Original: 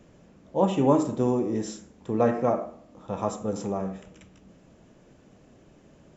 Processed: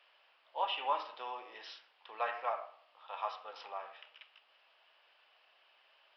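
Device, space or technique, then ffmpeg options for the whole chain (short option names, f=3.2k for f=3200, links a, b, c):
musical greeting card: -af "aresample=11025,aresample=44100,highpass=f=850:w=0.5412,highpass=f=850:w=1.3066,equalizer=f=2.9k:t=o:w=0.52:g=9.5,volume=-3dB"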